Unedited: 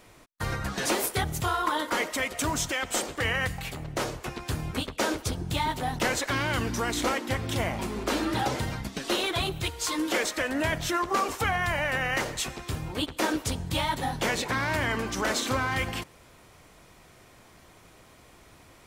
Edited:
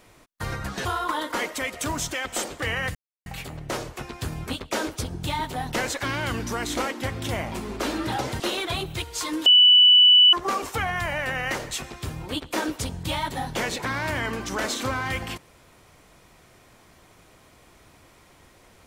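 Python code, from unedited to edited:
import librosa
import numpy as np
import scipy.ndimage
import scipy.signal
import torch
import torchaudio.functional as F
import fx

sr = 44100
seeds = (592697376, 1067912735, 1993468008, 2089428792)

y = fx.edit(x, sr, fx.cut(start_s=0.85, length_s=0.58),
    fx.insert_silence(at_s=3.53, length_s=0.31),
    fx.cut(start_s=8.67, length_s=0.39),
    fx.bleep(start_s=10.12, length_s=0.87, hz=2970.0, db=-10.5), tone=tone)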